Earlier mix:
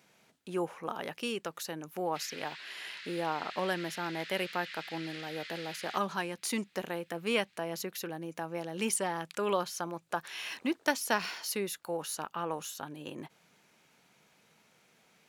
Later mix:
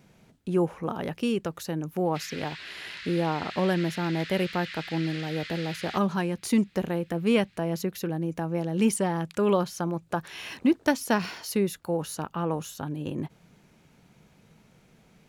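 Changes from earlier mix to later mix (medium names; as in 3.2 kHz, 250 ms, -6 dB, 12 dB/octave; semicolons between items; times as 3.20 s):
background +4.5 dB; master: remove high-pass 940 Hz 6 dB/octave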